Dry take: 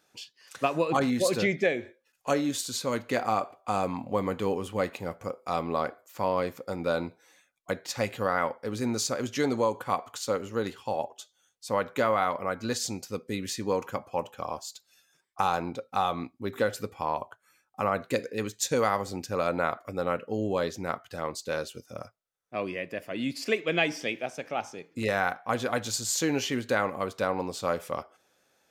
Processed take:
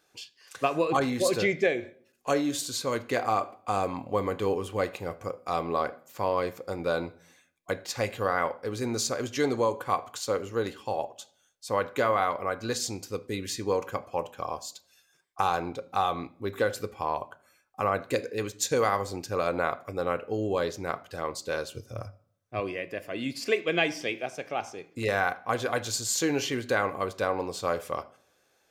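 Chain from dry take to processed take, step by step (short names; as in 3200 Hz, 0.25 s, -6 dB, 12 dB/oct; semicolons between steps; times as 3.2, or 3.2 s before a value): 21.69–22.6 bell 100 Hz +14.5 dB 0.58 oct; reverb RT60 0.60 s, pre-delay 3 ms, DRR 12 dB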